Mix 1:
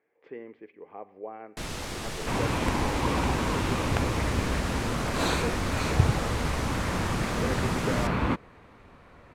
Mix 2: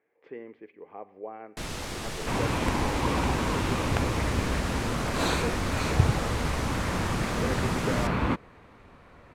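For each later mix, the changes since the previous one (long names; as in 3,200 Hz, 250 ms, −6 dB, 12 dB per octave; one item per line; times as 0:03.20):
nothing changed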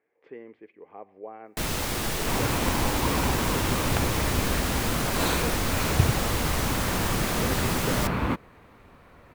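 speech: send −10.0 dB
first sound +6.0 dB
master: remove low-pass filter 8,800 Hz 12 dB per octave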